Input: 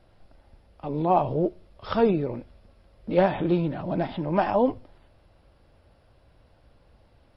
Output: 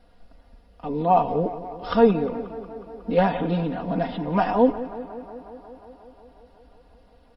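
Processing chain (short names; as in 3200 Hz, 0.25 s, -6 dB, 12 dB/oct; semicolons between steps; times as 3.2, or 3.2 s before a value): notch 2300 Hz, Q 16; comb 4.2 ms, depth 84%; on a send: tape echo 0.18 s, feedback 82%, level -14 dB, low-pass 2900 Hz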